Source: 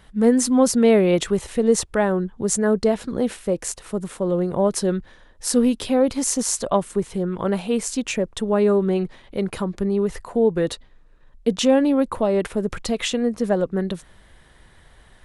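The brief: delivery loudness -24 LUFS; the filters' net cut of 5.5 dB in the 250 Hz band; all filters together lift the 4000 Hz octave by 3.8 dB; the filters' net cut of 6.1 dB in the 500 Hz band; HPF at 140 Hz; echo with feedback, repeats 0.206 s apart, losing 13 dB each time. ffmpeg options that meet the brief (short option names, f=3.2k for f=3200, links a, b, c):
-af "highpass=140,equalizer=f=250:t=o:g=-4.5,equalizer=f=500:t=o:g=-6,equalizer=f=4k:t=o:g=5,aecho=1:1:206|412|618:0.224|0.0493|0.0108,volume=1dB"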